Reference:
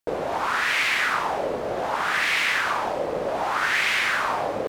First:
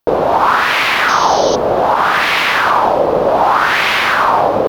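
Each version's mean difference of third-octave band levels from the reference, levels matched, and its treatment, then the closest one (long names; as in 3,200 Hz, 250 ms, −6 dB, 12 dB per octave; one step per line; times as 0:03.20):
3.0 dB: octave-band graphic EQ 1,000/2,000/8,000 Hz +4/−7/−12 dB
sound drawn into the spectrogram noise, 0:01.08–0:01.56, 2,900–6,500 Hz −38 dBFS
boost into a limiter +14.5 dB
level −1 dB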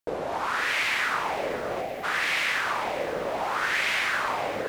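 1.5 dB: time-frequency box erased 0:01.82–0:02.04, 810–11,000 Hz
feedback echo at a low word length 515 ms, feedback 55%, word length 7 bits, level −12.5 dB
level −3.5 dB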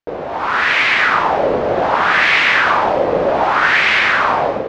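5.5 dB: automatic gain control gain up to 11.5 dB
flanger 1 Hz, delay 9 ms, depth 5.9 ms, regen −56%
high-frequency loss of the air 170 metres
level +6.5 dB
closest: second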